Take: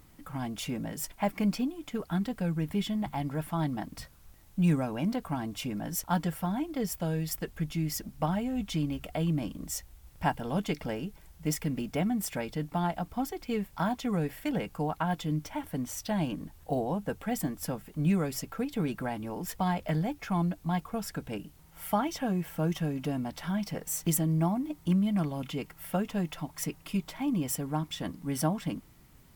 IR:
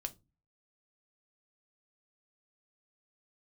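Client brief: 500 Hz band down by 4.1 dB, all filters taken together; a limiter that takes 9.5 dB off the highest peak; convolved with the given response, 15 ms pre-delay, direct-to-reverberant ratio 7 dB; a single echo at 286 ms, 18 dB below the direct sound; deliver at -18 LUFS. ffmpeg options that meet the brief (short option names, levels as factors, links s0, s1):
-filter_complex "[0:a]equalizer=f=500:t=o:g=-5.5,alimiter=limit=0.0631:level=0:latency=1,aecho=1:1:286:0.126,asplit=2[s0][s1];[1:a]atrim=start_sample=2205,adelay=15[s2];[s1][s2]afir=irnorm=-1:irlink=0,volume=0.531[s3];[s0][s3]amix=inputs=2:normalize=0,volume=6.31"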